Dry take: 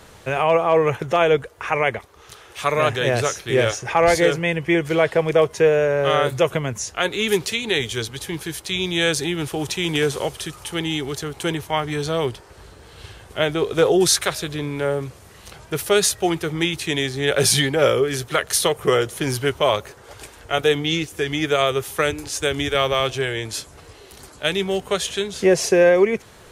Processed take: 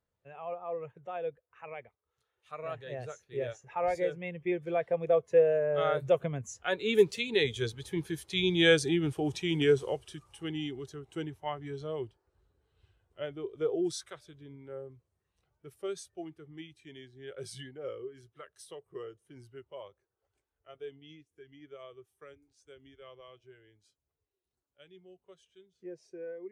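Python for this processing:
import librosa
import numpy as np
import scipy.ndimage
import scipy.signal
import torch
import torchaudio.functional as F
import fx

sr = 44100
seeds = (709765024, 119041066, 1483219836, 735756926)

y = fx.doppler_pass(x, sr, speed_mps=17, closest_m=25.0, pass_at_s=8.3)
y = fx.spectral_expand(y, sr, expansion=1.5)
y = F.gain(torch.from_numpy(y), -3.0).numpy()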